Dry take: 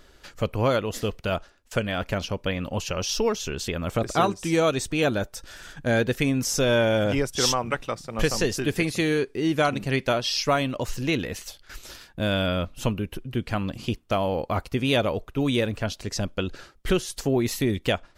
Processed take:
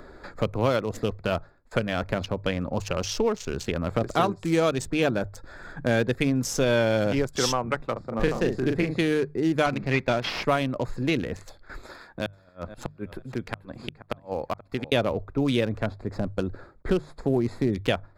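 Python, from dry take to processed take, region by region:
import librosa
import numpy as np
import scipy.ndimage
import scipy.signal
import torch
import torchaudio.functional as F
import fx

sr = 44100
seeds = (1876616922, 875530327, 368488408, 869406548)

y = fx.chain(x, sr, fx.lowpass(hz=2000.0, slope=6),
    fx.doubler(ms=39.0, db=-4.0), at=(7.92, 8.99))
y = fx.chain(y, sr, fx.cvsd(bps=32000),
    fx.peak_eq(hz=2300.0, db=7.5, octaves=0.57), at=(9.66, 10.45))
y = fx.chain(y, sr, fx.low_shelf(hz=440.0, db=-9.5),
    fx.gate_flip(shuts_db=-18.0, range_db=-34),
    fx.echo_feedback(ms=480, feedback_pct=22, wet_db=-16.0), at=(11.85, 14.92))
y = fx.chain(y, sr, fx.cvsd(bps=64000),
    fx.high_shelf(hz=2200.0, db=-10.0), at=(15.86, 17.73))
y = fx.wiener(y, sr, points=15)
y = fx.hum_notches(y, sr, base_hz=50, count=3)
y = fx.band_squash(y, sr, depth_pct=40)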